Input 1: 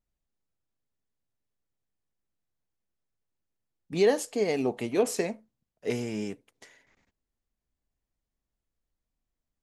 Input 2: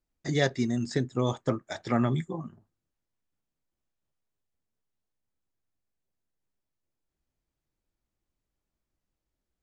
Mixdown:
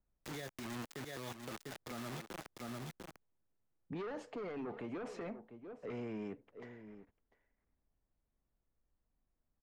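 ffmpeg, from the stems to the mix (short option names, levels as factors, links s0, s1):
-filter_complex "[0:a]asoftclip=type=tanh:threshold=0.0473,lowpass=1500,volume=1.26,asplit=2[s0][s1];[s1]volume=0.0891[s2];[1:a]acrusher=bits=4:mix=0:aa=0.000001,volume=0.75,asplit=2[s3][s4];[s4]volume=0.178[s5];[s2][s5]amix=inputs=2:normalize=0,aecho=0:1:697:1[s6];[s0][s3][s6]amix=inputs=3:normalize=0,acrossover=split=220|920|3200[s7][s8][s9][s10];[s7]acompressor=threshold=0.00447:ratio=4[s11];[s8]acompressor=threshold=0.01:ratio=4[s12];[s9]acompressor=threshold=0.00708:ratio=4[s13];[s10]acompressor=threshold=0.00501:ratio=4[s14];[s11][s12][s13][s14]amix=inputs=4:normalize=0,alimiter=level_in=3.76:limit=0.0631:level=0:latency=1:release=43,volume=0.266"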